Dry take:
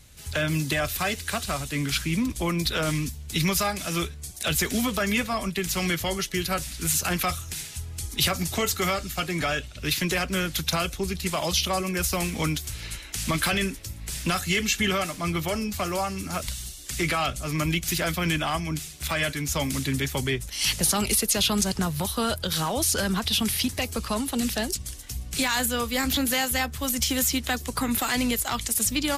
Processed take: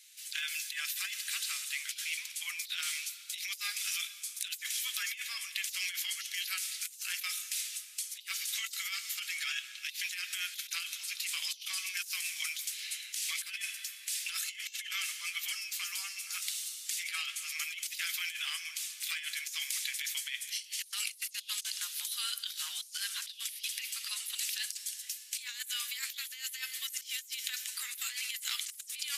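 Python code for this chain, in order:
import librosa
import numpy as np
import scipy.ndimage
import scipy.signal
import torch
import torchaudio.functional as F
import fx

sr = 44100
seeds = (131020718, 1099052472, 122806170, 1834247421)

y = scipy.signal.sosfilt(scipy.signal.cheby2(4, 80, 350.0, 'highpass', fs=sr, output='sos'), x)
y = fx.rev_plate(y, sr, seeds[0], rt60_s=2.8, hf_ratio=0.95, predelay_ms=0, drr_db=13.0)
y = fx.over_compress(y, sr, threshold_db=-33.0, ratio=-0.5)
y = y * librosa.db_to_amplitude(-4.0)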